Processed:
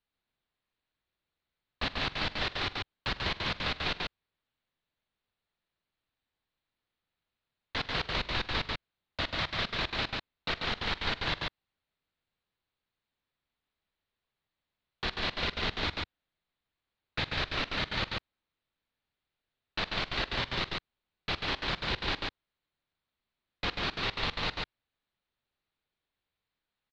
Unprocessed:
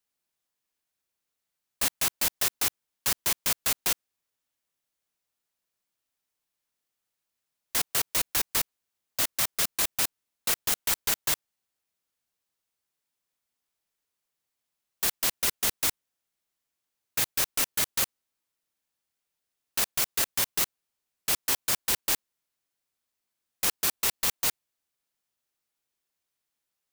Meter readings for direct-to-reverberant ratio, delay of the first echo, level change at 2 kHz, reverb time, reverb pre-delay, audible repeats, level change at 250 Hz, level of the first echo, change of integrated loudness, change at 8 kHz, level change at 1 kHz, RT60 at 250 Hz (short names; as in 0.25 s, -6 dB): none, 45 ms, +1.5 dB, none, none, 3, +4.0 dB, -18.0 dB, -6.5 dB, -27.5 dB, +2.0 dB, none